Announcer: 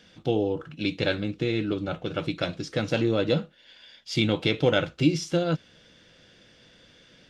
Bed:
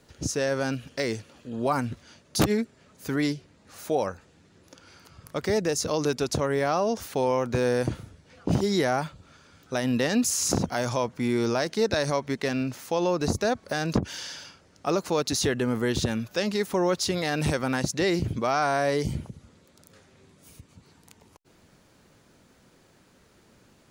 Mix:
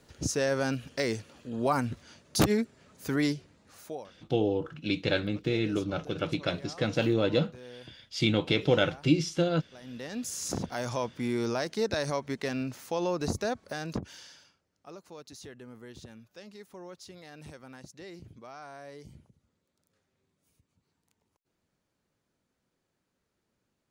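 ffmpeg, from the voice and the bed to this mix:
-filter_complex "[0:a]adelay=4050,volume=-2dB[a];[1:a]volume=16.5dB,afade=t=out:st=3.41:d=0.66:silence=0.0841395,afade=t=in:st=9.78:d=1.2:silence=0.125893,afade=t=out:st=13.31:d=1.33:silence=0.149624[b];[a][b]amix=inputs=2:normalize=0"

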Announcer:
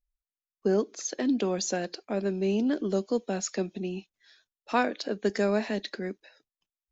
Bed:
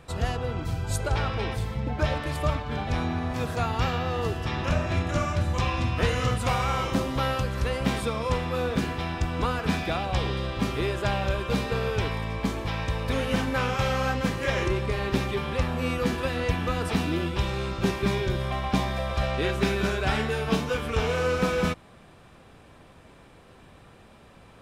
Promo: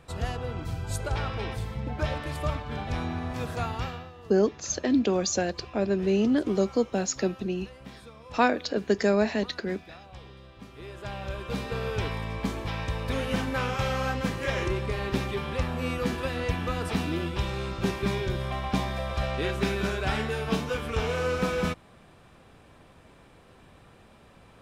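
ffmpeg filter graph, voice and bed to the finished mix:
-filter_complex "[0:a]adelay=3650,volume=3dB[a];[1:a]volume=13.5dB,afade=t=out:st=3.65:d=0.47:silence=0.158489,afade=t=in:st=10.71:d=1.34:silence=0.141254[b];[a][b]amix=inputs=2:normalize=0"

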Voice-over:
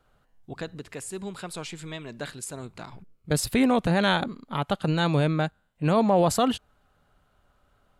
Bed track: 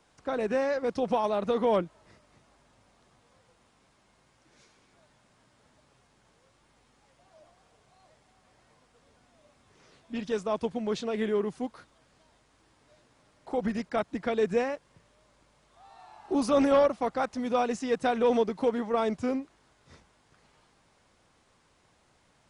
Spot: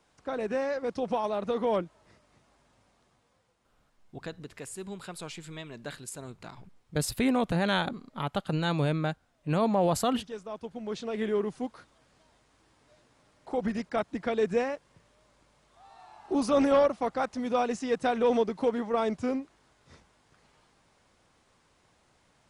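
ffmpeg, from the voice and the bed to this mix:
-filter_complex "[0:a]adelay=3650,volume=-4.5dB[a];[1:a]volume=6.5dB,afade=t=out:st=2.8:d=0.77:silence=0.446684,afade=t=in:st=10.64:d=0.68:silence=0.354813[b];[a][b]amix=inputs=2:normalize=0"

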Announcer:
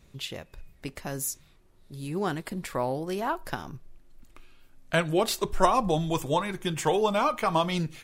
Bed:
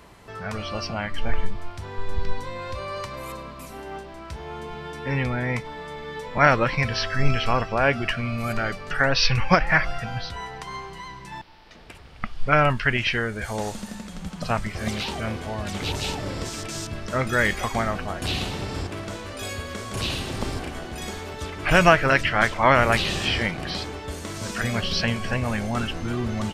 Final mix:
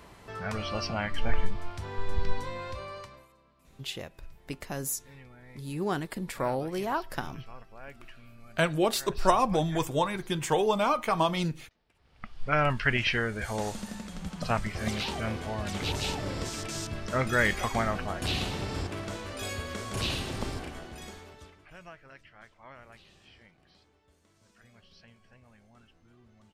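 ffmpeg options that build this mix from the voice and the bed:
-filter_complex "[0:a]adelay=3650,volume=-1dB[a];[1:a]volume=20.5dB,afade=t=out:st=2.43:d=0.85:silence=0.0630957,afade=t=in:st=11.94:d=1:silence=0.0707946,afade=t=out:st=20.1:d=1.59:silence=0.0334965[b];[a][b]amix=inputs=2:normalize=0"

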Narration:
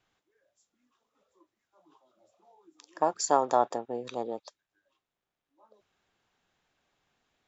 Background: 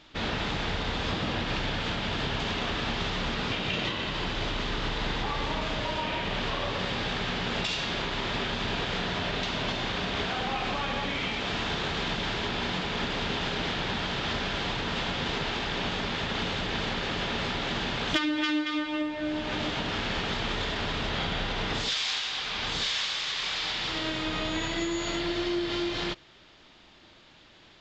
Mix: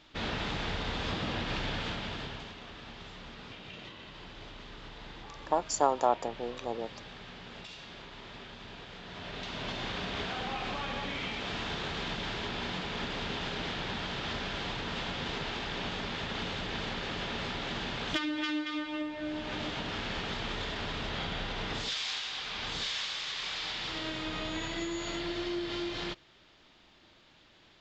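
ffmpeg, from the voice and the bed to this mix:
-filter_complex "[0:a]adelay=2500,volume=-2dB[a];[1:a]volume=7dB,afade=t=out:st=1.77:d=0.77:silence=0.237137,afade=t=in:st=9.02:d=0.82:silence=0.281838[b];[a][b]amix=inputs=2:normalize=0"

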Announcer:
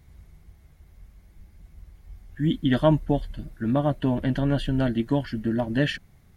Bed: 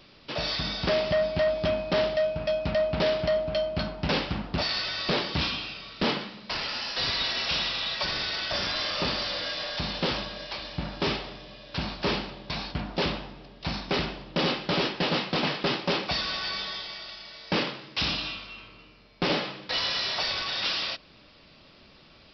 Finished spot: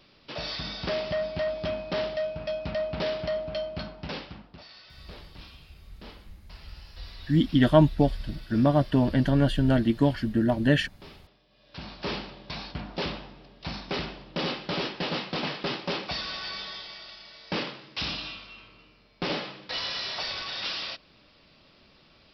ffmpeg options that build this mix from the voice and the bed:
-filter_complex "[0:a]adelay=4900,volume=1.5dB[a];[1:a]volume=12.5dB,afade=t=out:st=3.63:d=0.97:silence=0.149624,afade=t=in:st=11.49:d=0.68:silence=0.141254[b];[a][b]amix=inputs=2:normalize=0"

